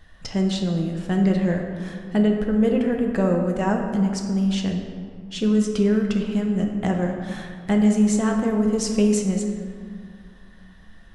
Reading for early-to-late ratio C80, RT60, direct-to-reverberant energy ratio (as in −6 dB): 5.5 dB, 2.2 s, 1.5 dB